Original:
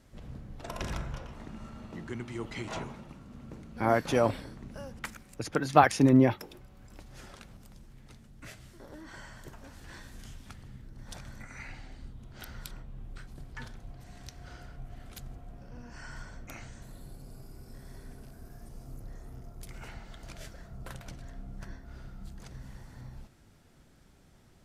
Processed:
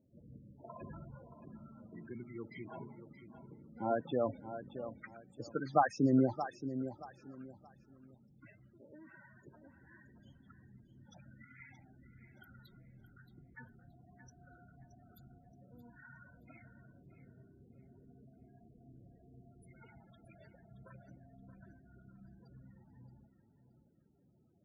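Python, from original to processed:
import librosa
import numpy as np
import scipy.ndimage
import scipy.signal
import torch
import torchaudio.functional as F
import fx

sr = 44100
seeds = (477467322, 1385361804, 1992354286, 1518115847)

y = scipy.signal.sosfilt(scipy.signal.butter(2, 120.0, 'highpass', fs=sr, output='sos'), x)
y = fx.spec_topn(y, sr, count=16)
y = fx.echo_feedback(y, sr, ms=624, feedback_pct=26, wet_db=-11.0)
y = F.gain(torch.from_numpy(y), -7.0).numpy()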